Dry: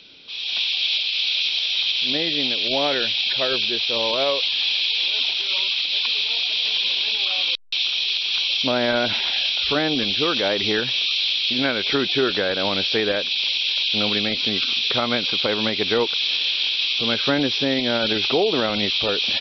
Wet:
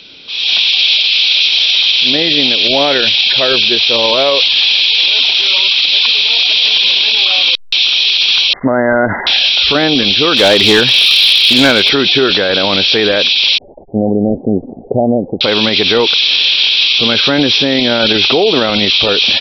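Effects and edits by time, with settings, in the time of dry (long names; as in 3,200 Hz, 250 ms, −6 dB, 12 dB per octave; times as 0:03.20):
0:08.53–0:09.27: linear-phase brick-wall low-pass 2,100 Hz
0:10.37–0:11.89: hard clipping −16 dBFS
0:13.58–0:15.41: Butterworth low-pass 770 Hz 72 dB per octave
whole clip: automatic gain control gain up to 7.5 dB; boost into a limiter +11 dB; level −1 dB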